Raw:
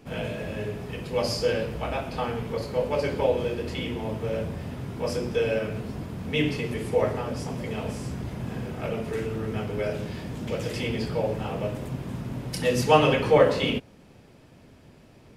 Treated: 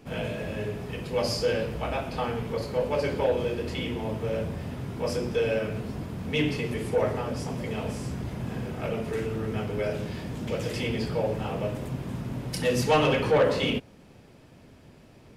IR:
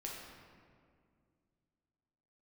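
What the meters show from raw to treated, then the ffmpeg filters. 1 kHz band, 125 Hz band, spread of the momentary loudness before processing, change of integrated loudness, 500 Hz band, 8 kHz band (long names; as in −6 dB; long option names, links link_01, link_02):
−2.5 dB, −0.5 dB, 14 LU, −1.5 dB, −1.5 dB, −0.5 dB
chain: -af "asoftclip=type=tanh:threshold=-15dB"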